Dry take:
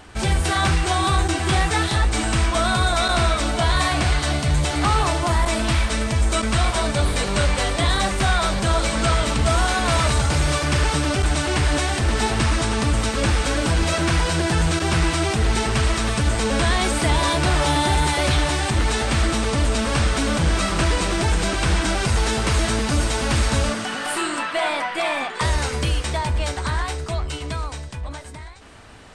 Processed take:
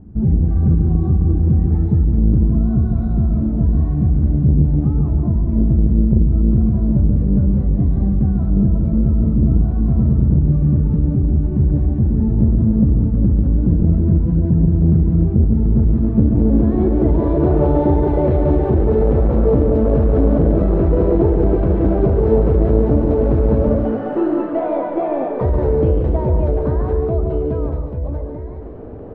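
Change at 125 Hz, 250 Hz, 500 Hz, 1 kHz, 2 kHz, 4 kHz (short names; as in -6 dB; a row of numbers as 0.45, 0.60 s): +7.5 dB, +9.0 dB, +6.0 dB, -8.0 dB, under -20 dB, under -30 dB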